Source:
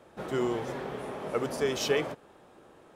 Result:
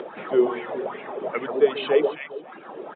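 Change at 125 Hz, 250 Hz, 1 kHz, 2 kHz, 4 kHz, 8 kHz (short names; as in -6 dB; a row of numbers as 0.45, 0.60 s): n/a, +5.5 dB, +5.5 dB, +4.0 dB, +0.5 dB, under -40 dB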